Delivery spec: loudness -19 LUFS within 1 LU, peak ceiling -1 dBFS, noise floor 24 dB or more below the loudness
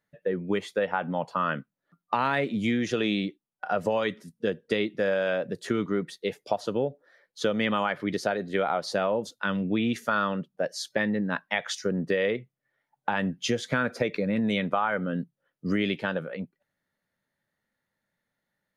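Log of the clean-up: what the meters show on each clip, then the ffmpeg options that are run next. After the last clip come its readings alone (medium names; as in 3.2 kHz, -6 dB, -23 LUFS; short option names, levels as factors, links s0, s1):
loudness -28.5 LUFS; peak level -11.0 dBFS; loudness target -19.0 LUFS
-> -af "volume=2.99"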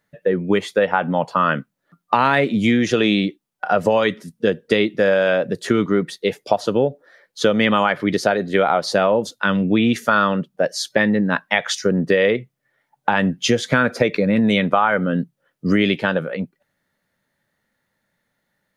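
loudness -19.0 LUFS; peak level -1.5 dBFS; noise floor -74 dBFS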